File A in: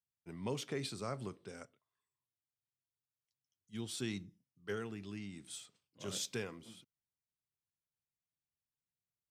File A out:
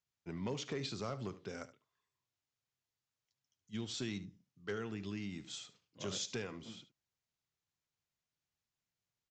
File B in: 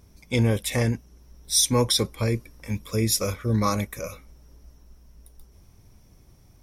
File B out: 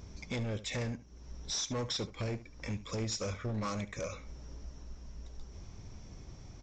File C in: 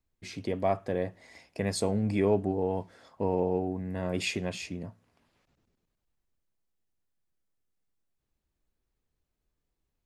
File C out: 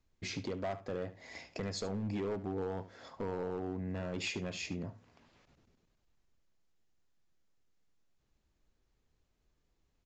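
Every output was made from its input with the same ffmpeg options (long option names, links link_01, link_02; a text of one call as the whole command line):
ffmpeg -i in.wav -af "acompressor=threshold=-43dB:ratio=2.5,aresample=16000,asoftclip=type=hard:threshold=-36.5dB,aresample=44100,aecho=1:1:73:0.168,volume=5dB" out.wav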